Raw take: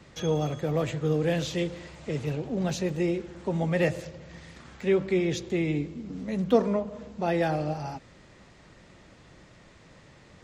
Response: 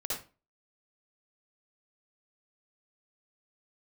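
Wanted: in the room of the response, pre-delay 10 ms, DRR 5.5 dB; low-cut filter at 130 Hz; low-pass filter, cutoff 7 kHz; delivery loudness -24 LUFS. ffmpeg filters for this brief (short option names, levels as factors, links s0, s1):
-filter_complex "[0:a]highpass=130,lowpass=7000,asplit=2[s0][s1];[1:a]atrim=start_sample=2205,adelay=10[s2];[s1][s2]afir=irnorm=-1:irlink=0,volume=0.355[s3];[s0][s3]amix=inputs=2:normalize=0,volume=1.5"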